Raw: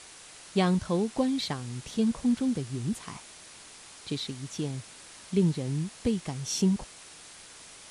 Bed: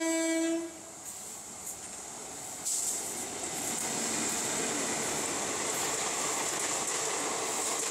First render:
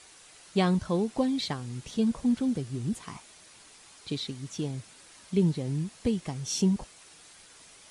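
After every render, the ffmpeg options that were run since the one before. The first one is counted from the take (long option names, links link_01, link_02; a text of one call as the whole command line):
ffmpeg -i in.wav -af "afftdn=noise_reduction=6:noise_floor=-49" out.wav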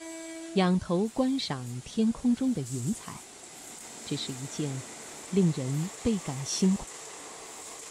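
ffmpeg -i in.wav -i bed.wav -filter_complex "[1:a]volume=-11.5dB[link_01];[0:a][link_01]amix=inputs=2:normalize=0" out.wav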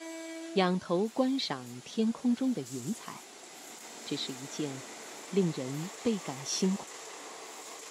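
ffmpeg -i in.wav -af "highpass=240,equalizer=frequency=8700:width=2.8:gain=-10" out.wav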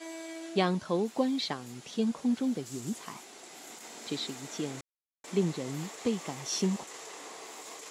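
ffmpeg -i in.wav -filter_complex "[0:a]asplit=3[link_01][link_02][link_03];[link_01]atrim=end=4.81,asetpts=PTS-STARTPTS,afade=type=out:start_time=4.806:duration=0.004:curve=hsin[link_04];[link_02]atrim=start=4.81:end=5.24,asetpts=PTS-STARTPTS,volume=0[link_05];[link_03]atrim=start=5.24,asetpts=PTS-STARTPTS,afade=type=in:duration=0.004:curve=hsin[link_06];[link_04][link_05][link_06]concat=n=3:v=0:a=1" out.wav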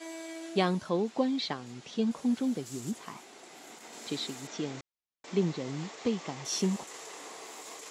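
ffmpeg -i in.wav -filter_complex "[0:a]asettb=1/sr,asplit=3[link_01][link_02][link_03];[link_01]atrim=end=0.894[link_04];[link_02]atrim=start=0.89:end=2.11,asetpts=PTS-STARTPTS,afade=type=in:duration=0.004:curve=qsin,afade=type=out:start_time=1.216:duration=0.004:curve=qsin,lowpass=6000[link_05];[link_03]atrim=start=2.106[link_06];[link_04][link_05]acrossfade=duration=0.004:curve1=hsin:curve2=qsin[link_07];[link_07][link_06]acrossfade=duration=0.004:curve1=qsin:curve2=hsin,asettb=1/sr,asplit=3[link_08][link_09][link_10];[link_08]atrim=end=2.914[link_11];[link_09]atrim=start=2.91:end=3.93,asetpts=PTS-STARTPTS,afade=type=in:duration=0.004:curve=qsin,afade=type=out:start_time=1.016:duration=0.004:curve=qsin,highshelf=frequency=4900:gain=-7[link_12];[link_10]atrim=start=3.926[link_13];[link_11][link_12]acrossfade=duration=0.004:curve1=hsin:curve2=qsin[link_14];[link_14][link_13]acrossfade=duration=0.004:curve1=qsin:curve2=hsin,asettb=1/sr,asplit=3[link_15][link_16][link_17];[link_15]atrim=end=4.474[link_18];[link_16]atrim=start=4.47:end=6.45,asetpts=PTS-STARTPTS,afade=type=in:duration=0.004:curve=qsin,afade=type=out:start_time=1.976:duration=0.004:curve=qsin,lowpass=frequency=6300:width=0.5412,lowpass=frequency=6300:width=1.3066[link_19];[link_17]atrim=start=6.446[link_20];[link_18][link_19]acrossfade=duration=0.004:curve1=hsin:curve2=qsin[link_21];[link_21][link_20]acrossfade=duration=0.004:curve1=qsin:curve2=hsin" out.wav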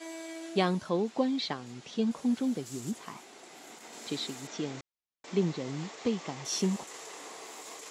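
ffmpeg -i in.wav -af anull out.wav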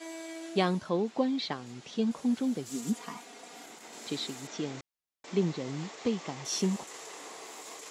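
ffmpeg -i in.wav -filter_complex "[0:a]asettb=1/sr,asplit=3[link_01][link_02][link_03];[link_01]atrim=end=0.794[link_04];[link_02]atrim=start=0.79:end=1.52,asetpts=PTS-STARTPTS,afade=type=in:duration=0.004:curve=qsin,afade=type=out:start_time=0.726:duration=0.004:curve=qsin,highshelf=frequency=6500:gain=-5[link_05];[link_03]atrim=start=1.516[link_06];[link_04][link_05]acrossfade=duration=0.004:curve1=hsin:curve2=qsin[link_07];[link_07][link_06]acrossfade=duration=0.004:curve1=qsin:curve2=hsin,asettb=1/sr,asplit=3[link_08][link_09][link_10];[link_08]atrim=end=2.684[link_11];[link_09]atrim=start=2.68:end=3.66,asetpts=PTS-STARTPTS,afade=type=in:duration=0.004:curve=qsin,afade=type=out:start_time=0.976:duration=0.004:curve=qsin,aecho=1:1:4.2:0.88,atrim=end_sample=43218[link_12];[link_10]atrim=start=3.656[link_13];[link_11][link_12]acrossfade=duration=0.004:curve1=hsin:curve2=qsin[link_14];[link_14][link_13]acrossfade=duration=0.004:curve1=qsin:curve2=hsin" out.wav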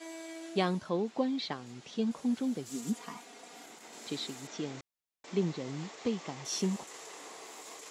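ffmpeg -i in.wav -af "volume=-2.5dB" out.wav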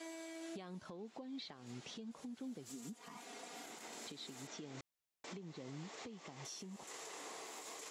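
ffmpeg -i in.wav -af "acompressor=threshold=-40dB:ratio=20,alimiter=level_in=15.5dB:limit=-24dB:level=0:latency=1:release=232,volume=-15.5dB" out.wav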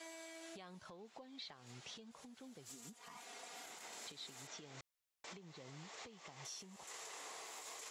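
ffmpeg -i in.wav -af "equalizer=frequency=260:width=0.86:gain=-10.5" out.wav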